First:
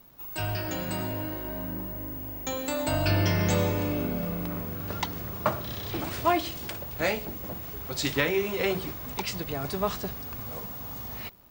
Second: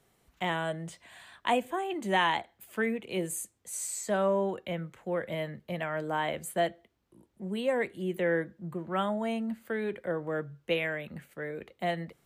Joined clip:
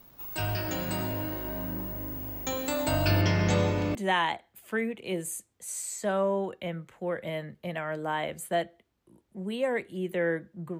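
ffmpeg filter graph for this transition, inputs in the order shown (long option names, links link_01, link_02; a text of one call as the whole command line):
ffmpeg -i cue0.wav -i cue1.wav -filter_complex "[0:a]asettb=1/sr,asplit=3[link_01][link_02][link_03];[link_01]atrim=end=3.214[link_04];[link_02]atrim=start=3.21:end=3.95,asetpts=PTS-STARTPTS,afade=type=in:duration=0.004:curve=qsin,afade=type=out:start_time=0.736:duration=0.004:curve=qsin,lowpass=6200[link_05];[link_03]atrim=start=3.946[link_06];[link_04][link_05]acrossfade=duration=0.004:curve1=hsin:curve2=qsin[link_07];[link_07][link_06]acrossfade=duration=0.004:curve1=qsin:curve2=hsin,apad=whole_dur=10.79,atrim=end=10.79,atrim=end=3.952[link_08];[1:a]atrim=start=1.998:end=8.84[link_09];[link_08][link_09]acrossfade=duration=0.004:curve1=hsin:curve2=hsin" out.wav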